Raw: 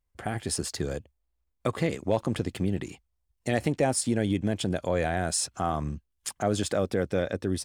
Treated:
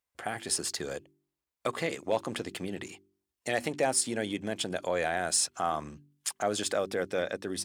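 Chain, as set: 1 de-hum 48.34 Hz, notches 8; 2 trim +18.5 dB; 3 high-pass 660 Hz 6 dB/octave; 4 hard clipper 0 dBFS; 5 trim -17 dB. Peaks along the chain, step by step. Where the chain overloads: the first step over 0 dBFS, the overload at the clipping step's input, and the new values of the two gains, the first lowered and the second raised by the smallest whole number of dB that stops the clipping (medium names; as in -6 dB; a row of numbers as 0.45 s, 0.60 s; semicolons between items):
-13.0 dBFS, +5.5 dBFS, +3.5 dBFS, 0.0 dBFS, -17.0 dBFS; step 2, 3.5 dB; step 2 +14.5 dB, step 5 -13 dB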